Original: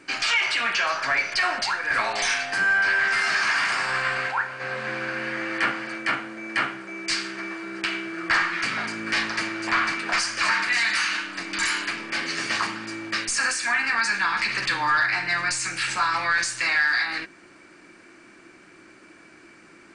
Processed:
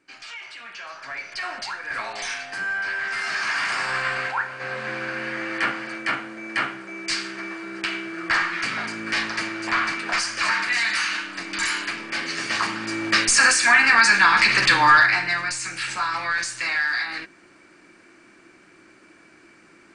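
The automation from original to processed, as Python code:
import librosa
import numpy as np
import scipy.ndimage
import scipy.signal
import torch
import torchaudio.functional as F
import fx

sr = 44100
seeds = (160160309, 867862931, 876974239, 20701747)

y = fx.gain(x, sr, db=fx.line((0.65, -16.0), (1.57, -6.0), (2.99, -6.0), (3.82, 0.0), (12.48, 0.0), (13.1, 8.0), (14.91, 8.0), (15.49, -2.0)))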